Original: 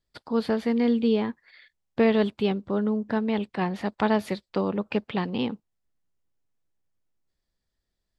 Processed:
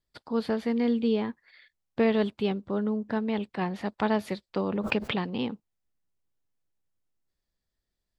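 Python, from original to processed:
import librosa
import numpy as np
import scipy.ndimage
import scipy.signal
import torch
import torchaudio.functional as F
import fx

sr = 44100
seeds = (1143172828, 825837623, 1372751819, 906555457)

y = fx.pre_swell(x, sr, db_per_s=41.0, at=(4.59, 5.25))
y = F.gain(torch.from_numpy(y), -3.0).numpy()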